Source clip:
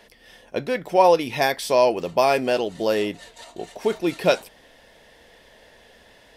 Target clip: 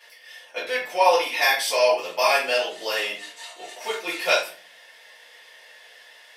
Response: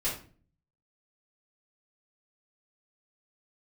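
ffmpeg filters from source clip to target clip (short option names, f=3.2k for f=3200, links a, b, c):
-filter_complex "[0:a]highpass=1.1k[a];[1:a]atrim=start_sample=2205[b];[a][b]afir=irnorm=-1:irlink=0"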